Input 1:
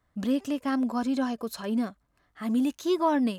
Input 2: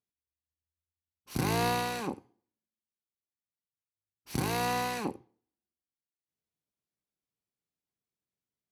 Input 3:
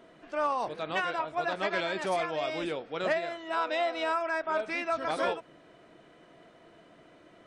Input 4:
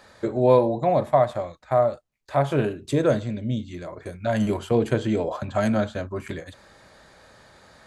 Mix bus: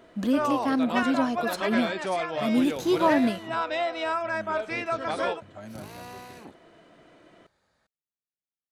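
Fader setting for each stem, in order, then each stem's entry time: +2.0, −12.5, +1.5, −20.0 decibels; 0.00, 1.40, 0.00, 0.00 seconds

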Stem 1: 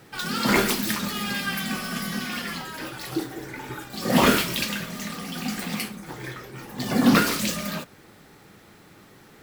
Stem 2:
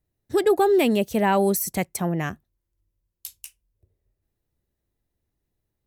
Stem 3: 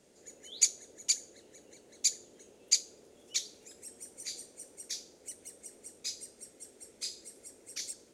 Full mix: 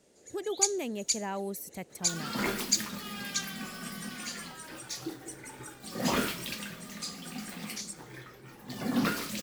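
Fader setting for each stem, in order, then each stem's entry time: −11.0, −15.5, −0.5 decibels; 1.90, 0.00, 0.00 seconds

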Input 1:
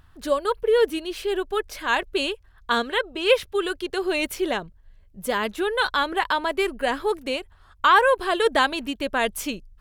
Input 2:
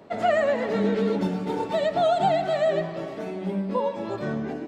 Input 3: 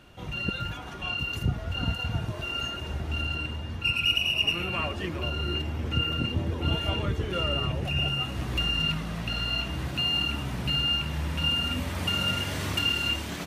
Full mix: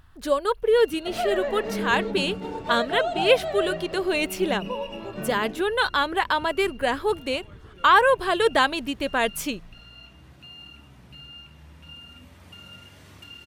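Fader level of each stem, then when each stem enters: 0.0, −5.5, −18.0 decibels; 0.00, 0.95, 0.45 seconds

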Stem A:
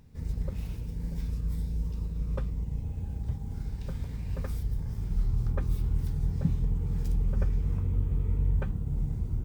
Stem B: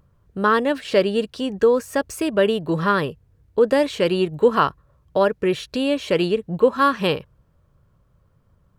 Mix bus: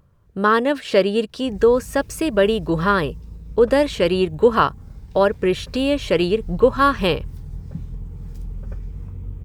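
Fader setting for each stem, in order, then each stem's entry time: −4.0, +1.5 decibels; 1.30, 0.00 seconds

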